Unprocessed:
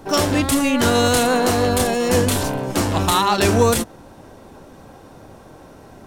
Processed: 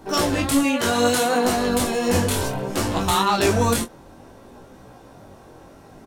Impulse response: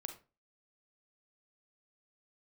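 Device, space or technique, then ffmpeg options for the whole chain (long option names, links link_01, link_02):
double-tracked vocal: -filter_complex "[0:a]asettb=1/sr,asplit=3[link_01][link_02][link_03];[link_01]atrim=end=0.634[link_04];[link_02]atrim=start=0.63:end=1.44,asetpts=PTS-STARTPTS,afade=type=in:duration=0.004:curve=qsin,afade=type=out:start_time=0.806:duration=0.004:curve=qsin,highpass=frequency=220:poles=1[link_05];[link_03]atrim=start=1.436[link_06];[link_04][link_05]acrossfade=duration=0.004:curve1=hsin:curve2=qsin[link_07];[link_07][link_06]acrossfade=duration=0.004:curve1=qsin:curve2=hsin,asplit=2[link_08][link_09];[link_09]adelay=25,volume=-11dB[link_10];[link_08][link_10]amix=inputs=2:normalize=0,flanger=delay=15.5:depth=7.2:speed=0.63"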